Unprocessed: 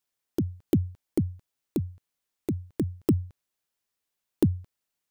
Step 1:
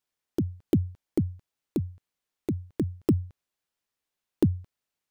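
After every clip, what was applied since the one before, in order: high shelf 6900 Hz -6.5 dB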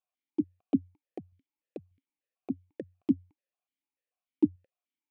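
vowel sequencer 6.8 Hz; gain +4.5 dB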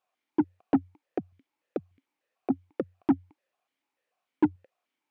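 overdrive pedal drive 25 dB, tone 1100 Hz, clips at -11.5 dBFS

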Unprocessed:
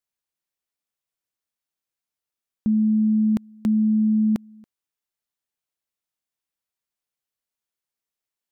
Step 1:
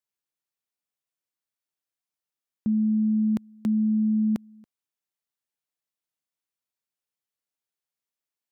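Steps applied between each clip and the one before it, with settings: HPF 78 Hz; gain -3.5 dB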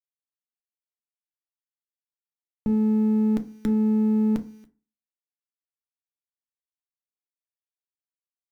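minimum comb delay 0.54 ms; bit-crush 11-bit; FDN reverb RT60 0.36 s, low-frequency decay 1.1×, high-frequency decay 0.55×, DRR 6.5 dB; gain +2 dB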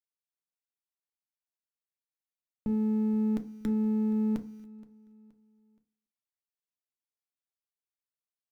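feedback echo 0.473 s, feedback 37%, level -21.5 dB; gain -6.5 dB

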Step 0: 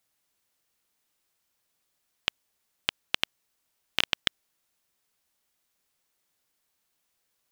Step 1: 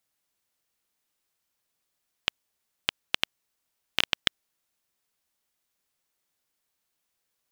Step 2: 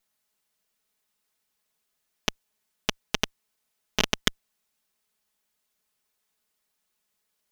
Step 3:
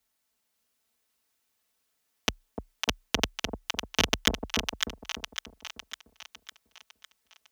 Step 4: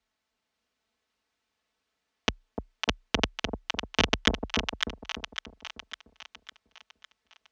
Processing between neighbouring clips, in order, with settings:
upward expander 1.5:1, over -33 dBFS; gain +2 dB
minimum comb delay 4.7 ms; gain +3.5 dB
frequency shift +29 Hz; split-band echo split 830 Hz, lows 0.298 s, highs 0.554 s, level -4.5 dB
air absorption 130 m; gain +2.5 dB

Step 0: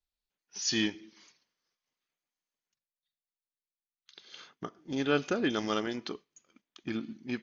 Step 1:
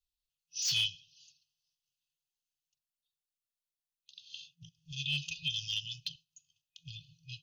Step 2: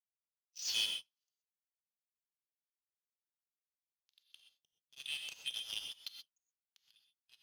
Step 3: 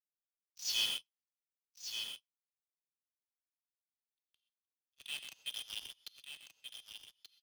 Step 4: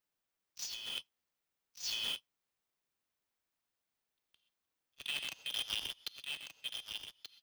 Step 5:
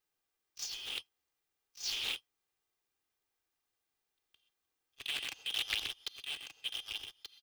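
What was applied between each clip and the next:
FFT band-reject 170–2500 Hz; hard clip -31 dBFS, distortion -11 dB; dynamic EQ 2800 Hz, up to +7 dB, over -52 dBFS, Q 0.82
steep high-pass 240 Hz 36 dB/oct; power-law curve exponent 2; non-linear reverb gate 0.15 s rising, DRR 3.5 dB; gain -1 dB
in parallel at -8.5 dB: companded quantiser 2-bit; on the sum: echo 1.181 s -4.5 dB; three-band expander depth 70%; gain -8.5 dB
negative-ratio compressor -43 dBFS, ratio -1; bell 11000 Hz -7.5 dB 2.3 oct; gain +7.5 dB
comb 2.5 ms, depth 45%; Doppler distortion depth 0.6 ms; gain +1 dB

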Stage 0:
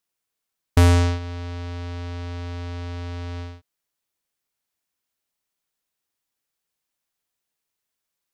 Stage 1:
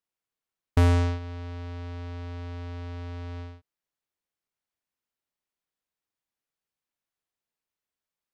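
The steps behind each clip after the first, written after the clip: high shelf 3900 Hz -8.5 dB; gain -5 dB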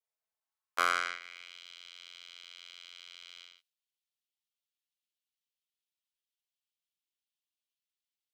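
minimum comb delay 4.6 ms; half-wave rectifier; high-pass sweep 560 Hz -> 3100 Hz, 0.19–1.61; gain +1 dB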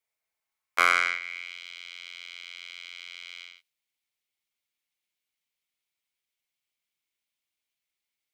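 bell 2200 Hz +10.5 dB 0.3 oct; gain +5 dB

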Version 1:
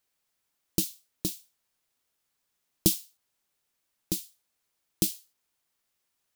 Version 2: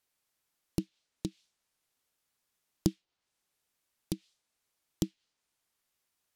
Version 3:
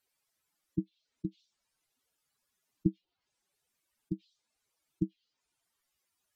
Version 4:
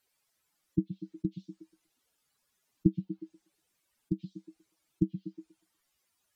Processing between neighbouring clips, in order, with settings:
treble ducked by the level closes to 970 Hz, closed at -27.5 dBFS; gain -1.5 dB
spectral contrast raised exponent 2.5
delay with a stepping band-pass 0.121 s, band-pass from 160 Hz, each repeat 0.7 oct, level -9 dB; gain +4 dB

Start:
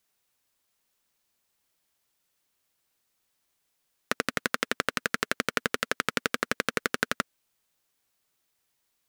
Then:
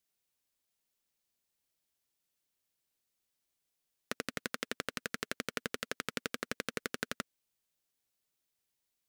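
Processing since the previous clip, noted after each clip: bell 1200 Hz -5 dB 1.7 oct; gain -7.5 dB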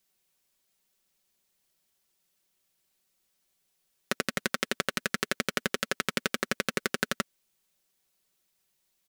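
comb 5.3 ms, depth 51%; gain +7.5 dB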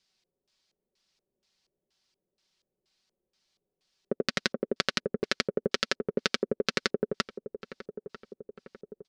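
LFO low-pass square 2.1 Hz 450–4800 Hz; darkening echo 0.945 s, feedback 61%, low-pass 1100 Hz, level -12.5 dB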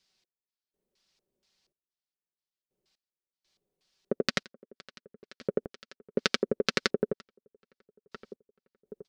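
step gate "x..xxxx...." 61 bpm -24 dB; gain +1 dB

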